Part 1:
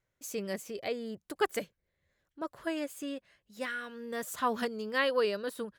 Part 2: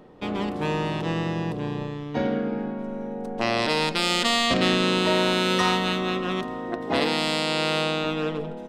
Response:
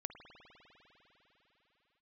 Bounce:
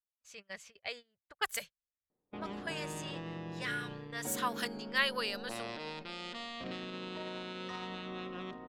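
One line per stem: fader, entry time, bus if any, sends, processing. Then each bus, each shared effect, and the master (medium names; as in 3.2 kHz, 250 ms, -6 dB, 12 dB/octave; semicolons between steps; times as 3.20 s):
0.0 dB, 0.00 s, no send, level rider gain up to 5.5 dB; amplifier tone stack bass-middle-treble 10-0-10
-12.5 dB, 2.10 s, no send, compression 2:1, threshold -28 dBFS, peak gain reduction 6.5 dB; peak limiter -18.5 dBFS, peak gain reduction 5 dB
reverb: none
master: gate -45 dBFS, range -24 dB; level-controlled noise filter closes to 1.2 kHz, open at -33 dBFS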